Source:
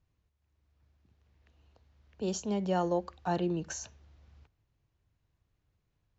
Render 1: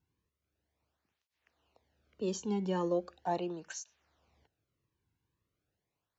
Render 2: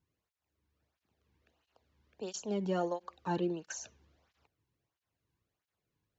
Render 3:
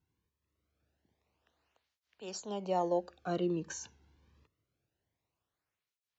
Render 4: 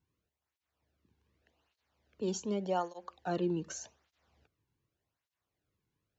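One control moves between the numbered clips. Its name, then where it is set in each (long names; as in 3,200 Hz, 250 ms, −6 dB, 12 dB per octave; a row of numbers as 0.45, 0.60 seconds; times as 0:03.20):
through-zero flanger with one copy inverted, nulls at: 0.39, 1.5, 0.25, 0.85 Hertz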